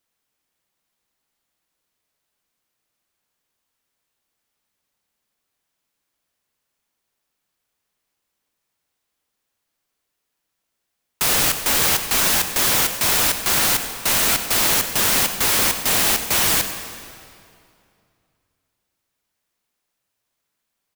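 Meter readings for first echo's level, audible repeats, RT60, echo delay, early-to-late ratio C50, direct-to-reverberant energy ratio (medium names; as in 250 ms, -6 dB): -16.5 dB, 1, 2.5 s, 95 ms, 7.5 dB, 7.5 dB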